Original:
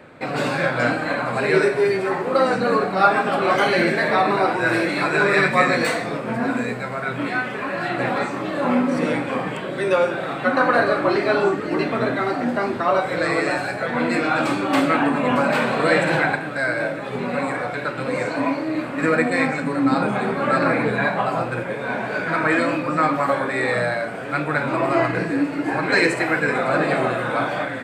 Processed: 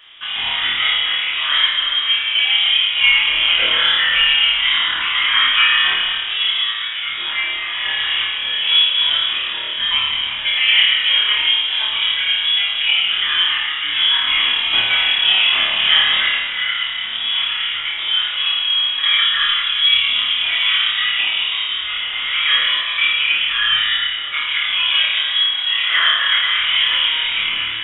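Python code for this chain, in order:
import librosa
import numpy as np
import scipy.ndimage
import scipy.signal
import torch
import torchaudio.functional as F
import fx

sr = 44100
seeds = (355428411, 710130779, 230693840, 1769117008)

p1 = fx.freq_invert(x, sr, carrier_hz=3600)
p2 = fx.peak_eq(p1, sr, hz=110.0, db=-4.5, octaves=2.1)
p3 = p2 + fx.room_flutter(p2, sr, wall_m=4.7, rt60_s=0.53, dry=0)
p4 = fx.rev_plate(p3, sr, seeds[0], rt60_s=2.2, hf_ratio=0.8, predelay_ms=0, drr_db=2.5)
y = p4 * librosa.db_to_amplitude(-2.0)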